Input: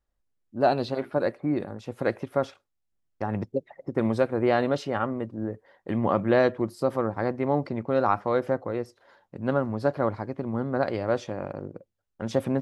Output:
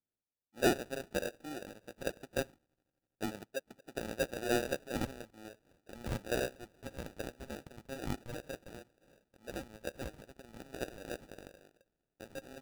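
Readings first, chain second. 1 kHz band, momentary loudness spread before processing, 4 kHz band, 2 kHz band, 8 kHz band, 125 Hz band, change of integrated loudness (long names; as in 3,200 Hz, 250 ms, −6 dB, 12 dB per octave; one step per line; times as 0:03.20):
−16.0 dB, 11 LU, −2.0 dB, −7.0 dB, can't be measured, −14.5 dB, −12.5 dB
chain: delay with a high-pass on its return 82 ms, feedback 83%, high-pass 4,100 Hz, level −16 dB
band-pass filter sweep 870 Hz → 1,900 Hz, 0:04.89–0:06.60
decimation without filtering 41×
level −2.5 dB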